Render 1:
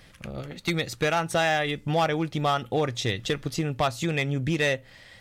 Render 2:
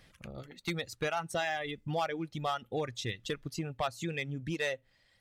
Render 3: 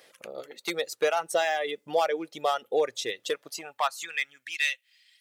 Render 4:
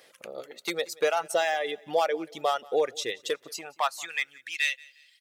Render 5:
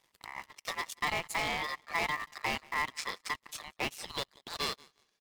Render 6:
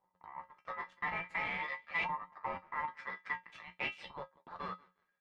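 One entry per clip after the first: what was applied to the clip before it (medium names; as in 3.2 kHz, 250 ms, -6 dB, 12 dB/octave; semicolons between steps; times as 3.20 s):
reverb removal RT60 1.9 s; trim -8 dB
treble shelf 6.1 kHz +8 dB; high-pass sweep 470 Hz -> 2.6 kHz, 3.22–4.73 s; trim +3.5 dB
feedback delay 180 ms, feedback 36%, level -24 dB
cycle switcher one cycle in 3, muted; ring modulator 1.5 kHz; waveshaping leveller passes 2; trim -8 dB
LFO low-pass saw up 0.49 Hz 900–2900 Hz; flange 0.42 Hz, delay 9.9 ms, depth 8.2 ms, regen +39%; feedback comb 180 Hz, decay 0.17 s, harmonics odd, mix 80%; trim +6 dB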